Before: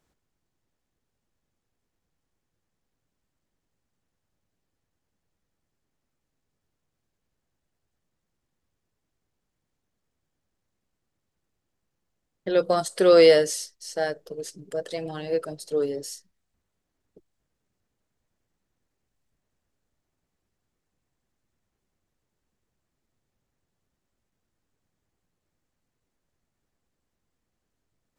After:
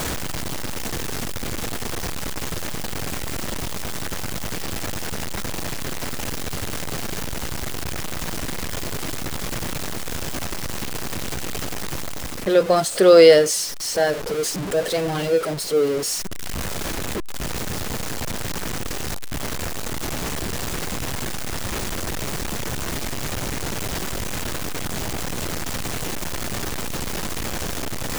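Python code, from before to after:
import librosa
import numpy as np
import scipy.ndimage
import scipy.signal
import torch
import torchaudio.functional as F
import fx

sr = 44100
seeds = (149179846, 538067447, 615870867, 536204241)

p1 = x + 0.5 * 10.0 ** (-29.5 / 20.0) * np.sign(x)
p2 = fx.rider(p1, sr, range_db=5, speed_s=0.5)
p3 = p1 + (p2 * 10.0 ** (3.0 / 20.0))
y = p3 * 10.0 ** (-1.0 / 20.0)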